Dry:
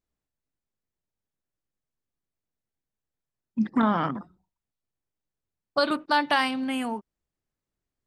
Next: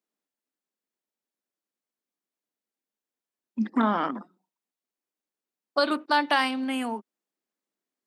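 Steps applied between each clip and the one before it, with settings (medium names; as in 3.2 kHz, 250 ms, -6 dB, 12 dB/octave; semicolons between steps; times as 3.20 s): steep high-pass 210 Hz 36 dB/octave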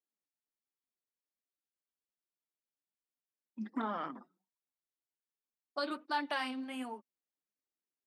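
flange 1.3 Hz, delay 2.1 ms, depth 6.3 ms, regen +36%; trim -8.5 dB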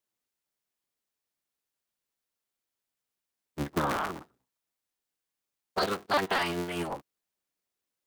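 cycle switcher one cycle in 3, inverted; trim +7.5 dB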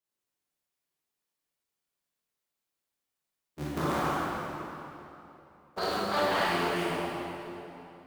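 reverberation RT60 3.1 s, pre-delay 15 ms, DRR -8 dB; trim -7.5 dB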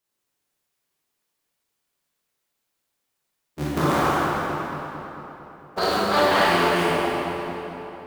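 filtered feedback delay 224 ms, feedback 65%, low-pass 3.9 kHz, level -10 dB; trim +8.5 dB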